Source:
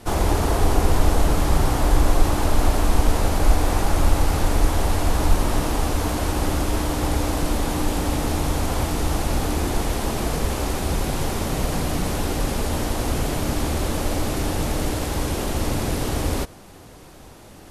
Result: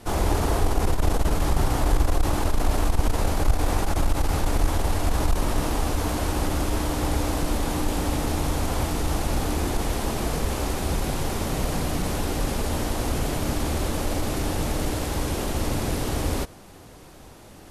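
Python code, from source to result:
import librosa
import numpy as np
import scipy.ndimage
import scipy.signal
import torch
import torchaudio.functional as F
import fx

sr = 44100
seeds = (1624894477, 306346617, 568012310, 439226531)

y = fx.transformer_sat(x, sr, knee_hz=59.0)
y = F.gain(torch.from_numpy(y), -2.0).numpy()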